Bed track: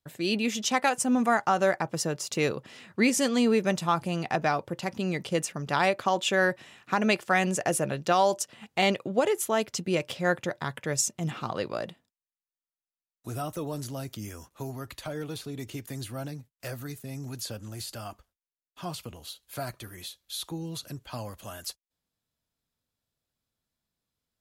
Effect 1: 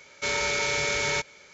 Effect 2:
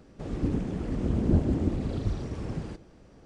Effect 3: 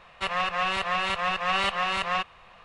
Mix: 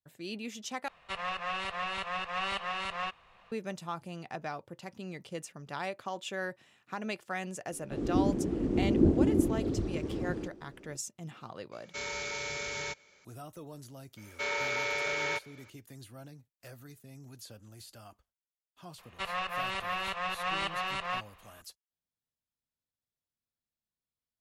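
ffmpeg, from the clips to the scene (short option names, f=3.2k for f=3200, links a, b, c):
-filter_complex "[3:a]asplit=2[a][b];[1:a]asplit=2[c][d];[0:a]volume=-12.5dB[e];[2:a]equalizer=f=340:t=o:w=1.1:g=13[f];[d]bass=f=250:g=-14,treble=f=4k:g=-11[g];[e]asplit=2[h][i];[h]atrim=end=0.884[j];[a]atrim=end=2.64,asetpts=PTS-STARTPTS,volume=-8.5dB[k];[i]atrim=start=3.516[l];[f]atrim=end=3.25,asetpts=PTS-STARTPTS,volume=-6.5dB,afade=t=in:d=0.004:c=hsin,afade=t=out:st=3.246:d=0.004:c=hsin,adelay=7720[m];[c]atrim=end=1.53,asetpts=PTS-STARTPTS,volume=-10.5dB,afade=t=in:d=0.004:c=hsin,afade=t=out:st=1.526:d=0.004:c=hsin,adelay=11720[n];[g]atrim=end=1.53,asetpts=PTS-STARTPTS,volume=-4dB,afade=t=in:d=0.004:c=hsin,afade=t=out:st=1.526:d=0.004:c=hsin,adelay=14170[o];[b]atrim=end=2.64,asetpts=PTS-STARTPTS,volume=-7.5dB,afade=t=in:d=0.004:c=hsin,afade=t=out:st=2.636:d=0.004:c=hsin,adelay=18980[p];[j][k]acrossfade=d=0.004:c1=hsin:c2=hsin[q];[q][l]acrossfade=d=0.004:c1=hsin:c2=hsin[r];[r][m][n][o][p]amix=inputs=5:normalize=0"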